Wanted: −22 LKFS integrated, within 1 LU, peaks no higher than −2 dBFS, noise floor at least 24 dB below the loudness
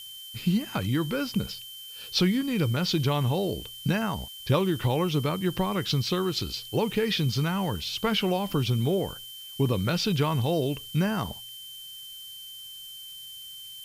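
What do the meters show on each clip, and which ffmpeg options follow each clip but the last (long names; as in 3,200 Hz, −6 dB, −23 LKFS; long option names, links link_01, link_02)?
interfering tone 3,100 Hz; level of the tone −41 dBFS; background noise floor −43 dBFS; target noise floor −51 dBFS; integrated loudness −27.0 LKFS; sample peak −13.0 dBFS; target loudness −22.0 LKFS
→ -af "bandreject=frequency=3100:width=30"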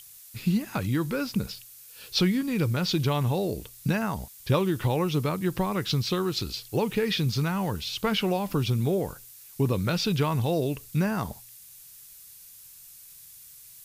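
interfering tone none found; background noise floor −49 dBFS; target noise floor −52 dBFS
→ -af "afftdn=noise_reduction=6:noise_floor=-49"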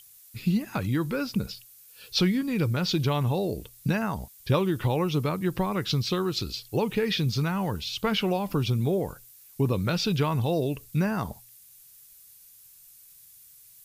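background noise floor −53 dBFS; integrated loudness −27.5 LKFS; sample peak −13.0 dBFS; target loudness −22.0 LKFS
→ -af "volume=5.5dB"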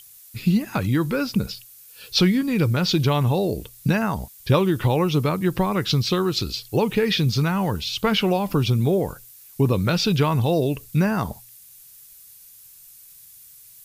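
integrated loudness −22.0 LKFS; sample peak −7.5 dBFS; background noise floor −48 dBFS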